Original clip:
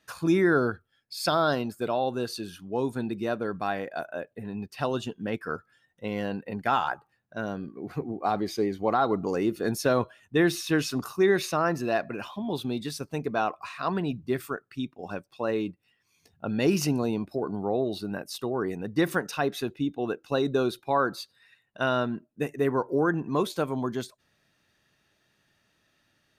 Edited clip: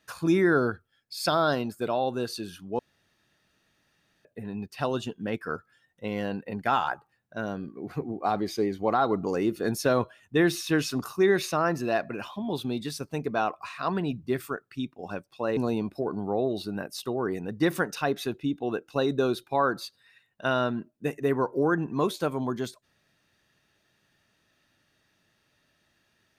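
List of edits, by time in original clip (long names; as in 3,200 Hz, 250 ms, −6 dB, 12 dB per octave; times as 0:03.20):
0:02.79–0:04.25: fill with room tone
0:15.57–0:16.93: remove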